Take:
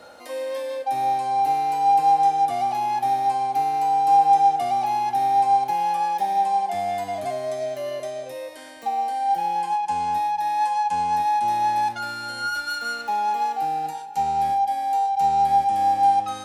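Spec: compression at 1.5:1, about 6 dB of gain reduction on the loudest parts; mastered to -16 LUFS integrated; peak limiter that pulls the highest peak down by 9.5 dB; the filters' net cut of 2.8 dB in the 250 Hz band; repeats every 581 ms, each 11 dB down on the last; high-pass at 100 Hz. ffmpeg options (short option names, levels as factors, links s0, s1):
-af "highpass=100,equalizer=f=250:t=o:g=-3.5,acompressor=threshold=0.0282:ratio=1.5,alimiter=level_in=1.19:limit=0.0631:level=0:latency=1,volume=0.841,aecho=1:1:581|1162|1743:0.282|0.0789|0.0221,volume=5.31"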